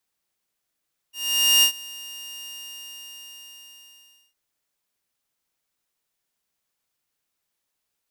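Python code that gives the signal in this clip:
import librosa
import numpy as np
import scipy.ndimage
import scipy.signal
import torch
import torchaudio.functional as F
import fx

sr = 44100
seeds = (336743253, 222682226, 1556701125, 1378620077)

y = fx.adsr_tone(sr, wave='saw', hz=2820.0, attack_ms=496.0, decay_ms=92.0, sustain_db=-22.5, held_s=1.33, release_ms=1880.0, level_db=-10.5)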